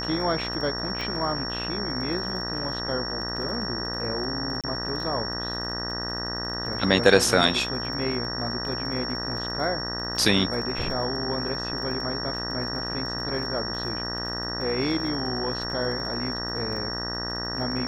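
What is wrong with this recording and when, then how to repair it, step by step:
mains buzz 60 Hz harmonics 32 −34 dBFS
surface crackle 25 per second −34 dBFS
whistle 5,500 Hz −31 dBFS
0:01.01: click −19 dBFS
0:04.61–0:04.64: drop-out 27 ms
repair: click removal
hum removal 60 Hz, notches 32
notch filter 5,500 Hz, Q 30
repair the gap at 0:04.61, 27 ms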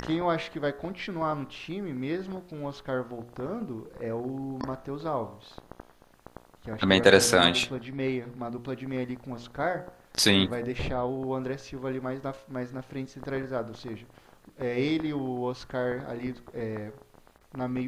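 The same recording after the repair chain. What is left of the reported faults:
0:01.01: click

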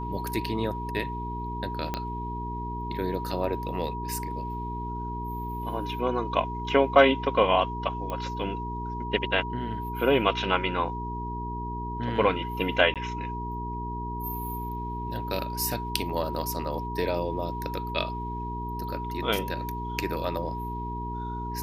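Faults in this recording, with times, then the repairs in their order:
mains hum 60 Hz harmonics 7 −35 dBFS
whistle 960 Hz −34 dBFS
0:01.94: click −15 dBFS
0:08.10: click −20 dBFS
0:12.94–0:12.96: drop-out 17 ms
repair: click removal
hum removal 60 Hz, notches 7
notch filter 960 Hz, Q 30
repair the gap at 0:12.94, 17 ms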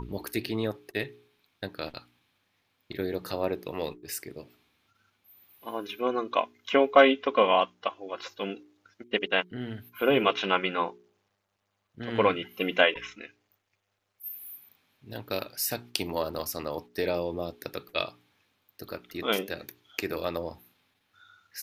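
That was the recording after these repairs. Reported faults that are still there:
0:01.94: click

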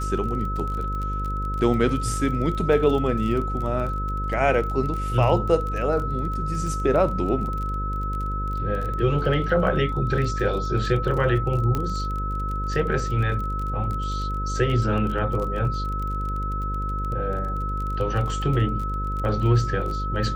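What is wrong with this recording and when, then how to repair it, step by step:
mains buzz 50 Hz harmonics 11 −28 dBFS
surface crackle 24 per second −29 dBFS
whistle 1,300 Hz −29 dBFS
0:11.75: click −13 dBFS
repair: click removal
notch filter 1,300 Hz, Q 30
hum removal 50 Hz, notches 11

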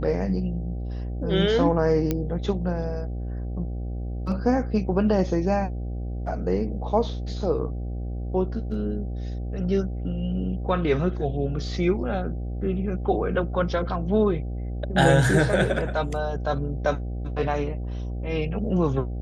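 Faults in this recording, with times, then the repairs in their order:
mains buzz 60 Hz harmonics 13 −30 dBFS
0:02.11: click −11 dBFS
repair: click removal
hum removal 60 Hz, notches 13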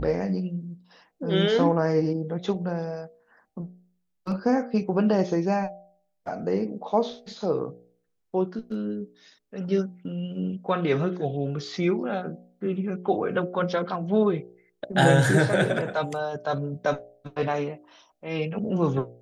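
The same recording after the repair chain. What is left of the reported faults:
none of them is left

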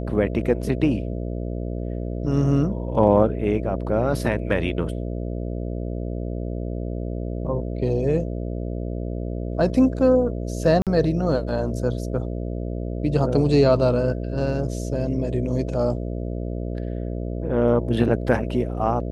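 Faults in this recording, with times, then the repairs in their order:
mains buzz 60 Hz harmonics 11 −28 dBFS
0:10.82–0:10.87: drop-out 47 ms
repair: hum removal 60 Hz, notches 11
repair the gap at 0:10.82, 47 ms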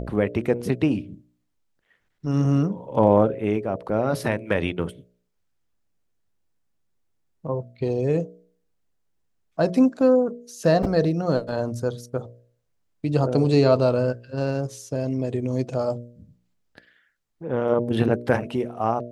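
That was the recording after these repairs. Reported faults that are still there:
none of them is left

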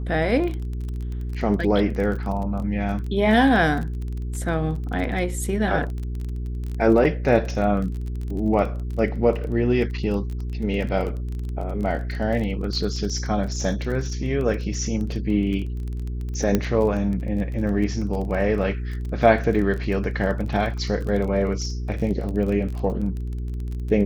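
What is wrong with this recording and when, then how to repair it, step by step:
surface crackle 23 per second −29 dBFS
mains hum 60 Hz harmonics 7 −28 dBFS
0:16.55: click −7 dBFS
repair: click removal
hum removal 60 Hz, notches 7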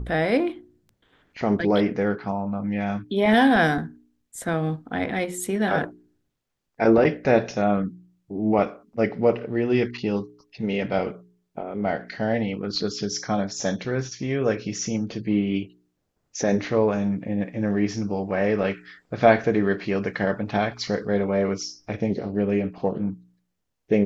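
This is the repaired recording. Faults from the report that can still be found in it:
none of them is left

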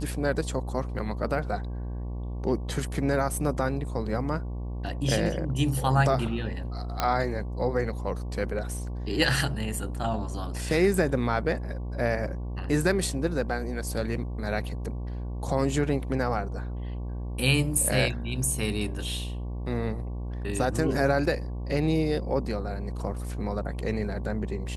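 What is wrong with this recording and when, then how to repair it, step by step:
mains buzz 60 Hz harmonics 19 −33 dBFS
0:07.00: click −10 dBFS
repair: click removal
hum removal 60 Hz, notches 19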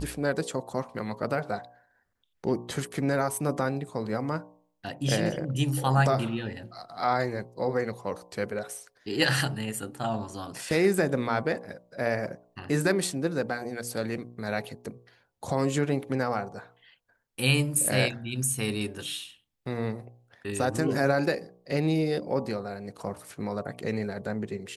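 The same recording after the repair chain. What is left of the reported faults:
none of them is left

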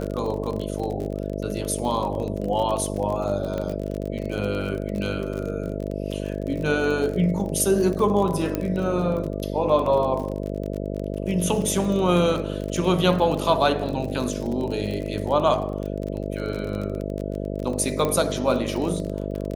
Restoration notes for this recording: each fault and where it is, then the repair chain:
mains buzz 50 Hz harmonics 13 −29 dBFS
surface crackle 35 per second −28 dBFS
0:03.58: click −17 dBFS
0:08.55: click −11 dBFS
0:18.05: click −11 dBFS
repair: click removal
hum removal 50 Hz, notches 13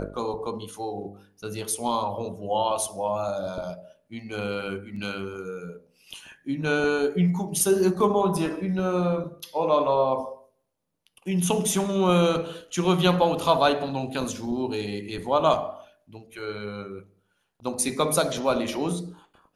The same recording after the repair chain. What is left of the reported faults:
none of them is left

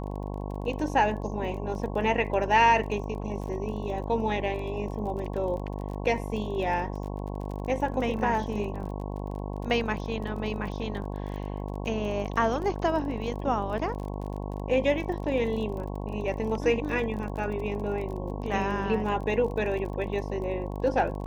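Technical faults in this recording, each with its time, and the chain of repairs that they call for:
mains buzz 50 Hz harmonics 22 −34 dBFS
surface crackle 29 per second −36 dBFS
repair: click removal
hum removal 50 Hz, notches 22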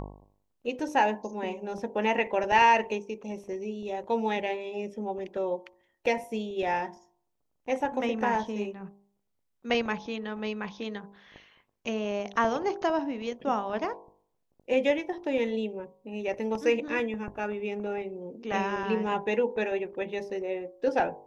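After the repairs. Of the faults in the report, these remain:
none of them is left

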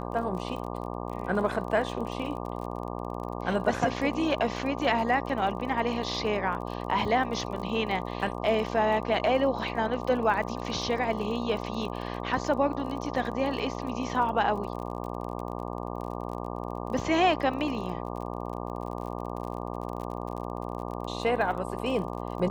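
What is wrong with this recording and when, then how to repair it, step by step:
mains buzz 60 Hz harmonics 20 −35 dBFS
surface crackle 36 per second −36 dBFS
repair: click removal
hum removal 60 Hz, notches 20

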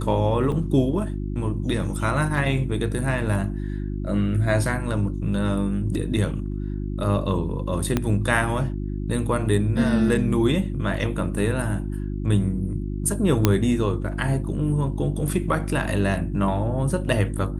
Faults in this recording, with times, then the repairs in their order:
mains hum 50 Hz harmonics 7 −28 dBFS
0:00.52: drop-out 4.1 ms
0:07.97: click −8 dBFS
0:13.45: click −2 dBFS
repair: click removal
hum removal 50 Hz, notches 7
repair the gap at 0:00.52, 4.1 ms

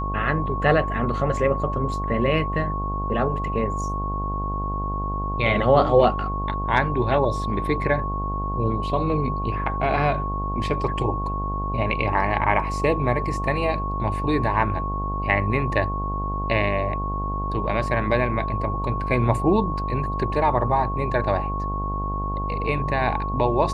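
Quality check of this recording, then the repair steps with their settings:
mains buzz 50 Hz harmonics 22 −28 dBFS
whistle 1,100 Hz −28 dBFS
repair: hum removal 50 Hz, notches 22
notch filter 1,100 Hz, Q 30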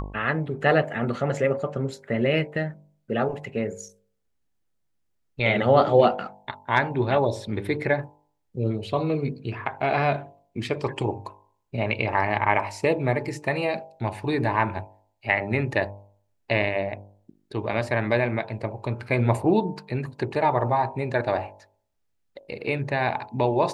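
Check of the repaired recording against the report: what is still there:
none of them is left

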